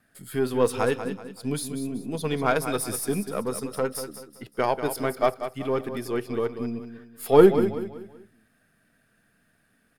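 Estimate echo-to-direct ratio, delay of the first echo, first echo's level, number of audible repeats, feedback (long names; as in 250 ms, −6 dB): −9.5 dB, 190 ms, −10.0 dB, 3, 36%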